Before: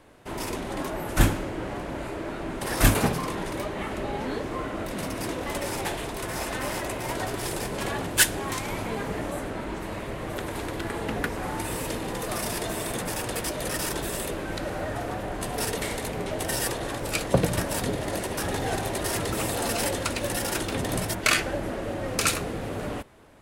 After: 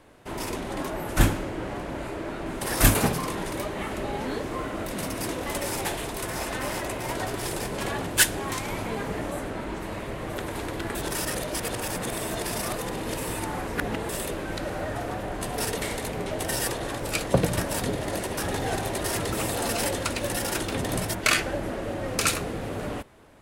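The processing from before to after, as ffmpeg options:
-filter_complex "[0:a]asettb=1/sr,asplit=3[a][b][c];[a]atrim=end=2.464[d];[b]atrim=start=2.46:end=6.3,asetpts=PTS-STARTPTS,afade=t=in:d=0.004:c=qsin,afade=t=out:st=3.836:d=0.004:c=qsin,highshelf=f=6.5k:g=5.5[e];[c]atrim=start=6.296[f];[d][e]acrossfade=d=0.004:c1=hsin:c2=qsin[g];[g][f]acrossfade=d=0.004:c1=qsin:c2=hsin,asplit=3[h][i][j];[h]atrim=end=10.952[k];[i]atrim=start=10.948:end=14.092,asetpts=PTS-STARTPTS,areverse[l];[j]atrim=start=14.088[m];[k][l]acrossfade=d=0.004:c1=hsin:c2=hsin[n];[n][m]acrossfade=d=0.004:c1=hsin:c2=hsin"

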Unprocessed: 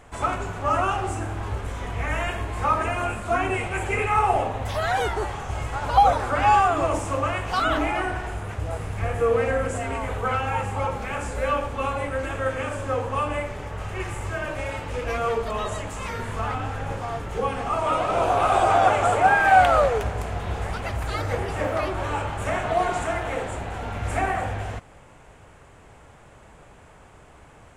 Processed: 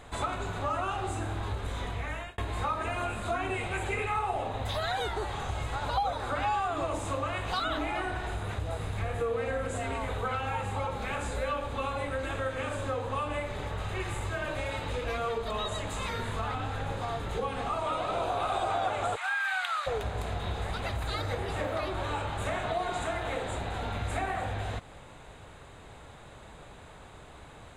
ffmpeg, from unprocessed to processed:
-filter_complex "[0:a]asplit=3[a][b][c];[a]afade=t=out:st=19.15:d=0.02[d];[b]highpass=f=1.2k:w=0.5412,highpass=f=1.2k:w=1.3066,afade=t=in:st=19.15:d=0.02,afade=t=out:st=19.86:d=0.02[e];[c]afade=t=in:st=19.86:d=0.02[f];[d][e][f]amix=inputs=3:normalize=0,asplit=2[g][h];[g]atrim=end=2.38,asetpts=PTS-STARTPTS,afade=t=out:st=1.75:d=0.63[i];[h]atrim=start=2.38,asetpts=PTS-STARTPTS,afade=t=in:d=0.004:c=hsin[j];[i][j]concat=n=2:v=0:a=1,equalizer=f=3.8k:t=o:w=0.24:g=13,bandreject=f=5.6k:w=8.5,acompressor=threshold=-31dB:ratio=3"

